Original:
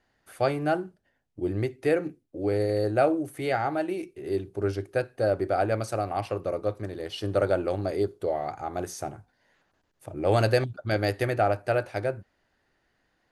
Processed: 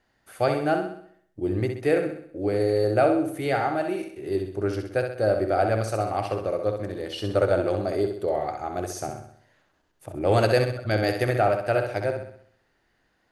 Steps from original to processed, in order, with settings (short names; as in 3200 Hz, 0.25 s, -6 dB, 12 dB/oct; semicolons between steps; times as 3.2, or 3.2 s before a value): flutter echo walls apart 11.1 m, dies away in 0.61 s; gain +1.5 dB